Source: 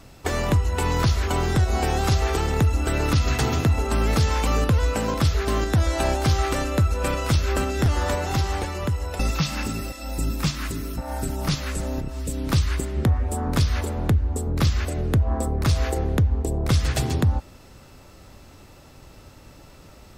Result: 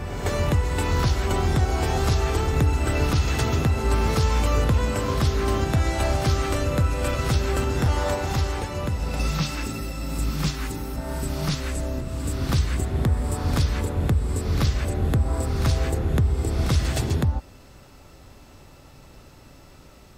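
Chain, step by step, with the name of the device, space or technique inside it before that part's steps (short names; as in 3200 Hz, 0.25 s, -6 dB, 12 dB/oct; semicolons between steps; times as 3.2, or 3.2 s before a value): reverse reverb (reverse; reverb RT60 2.6 s, pre-delay 6 ms, DRR 3.5 dB; reverse); gain -2.5 dB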